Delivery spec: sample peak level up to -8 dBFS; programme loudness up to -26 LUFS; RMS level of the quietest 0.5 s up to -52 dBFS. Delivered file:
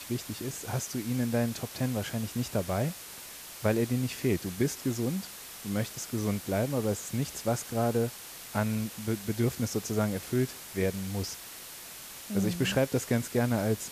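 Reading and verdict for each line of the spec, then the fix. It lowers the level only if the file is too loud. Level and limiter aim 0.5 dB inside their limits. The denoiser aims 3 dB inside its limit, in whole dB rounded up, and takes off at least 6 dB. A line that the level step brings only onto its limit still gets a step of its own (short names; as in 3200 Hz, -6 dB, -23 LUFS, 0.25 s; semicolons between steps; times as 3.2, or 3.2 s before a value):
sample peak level -14.5 dBFS: OK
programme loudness -31.0 LUFS: OK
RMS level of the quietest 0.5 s -45 dBFS: fail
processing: denoiser 10 dB, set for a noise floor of -45 dBFS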